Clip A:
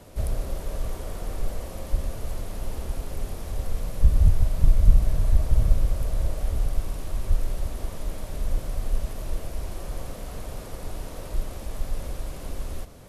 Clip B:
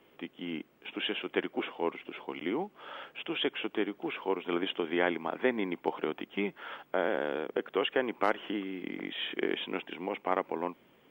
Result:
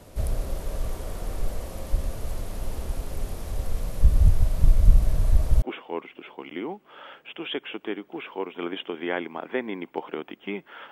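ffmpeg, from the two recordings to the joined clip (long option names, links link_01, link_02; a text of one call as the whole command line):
ffmpeg -i cue0.wav -i cue1.wav -filter_complex "[0:a]apad=whole_dur=10.91,atrim=end=10.91,atrim=end=5.622[link_01];[1:a]atrim=start=1.518:end=6.81[link_02];[link_01][link_02]acrossfade=duration=0.004:curve1=hsin:curve2=hsin" out.wav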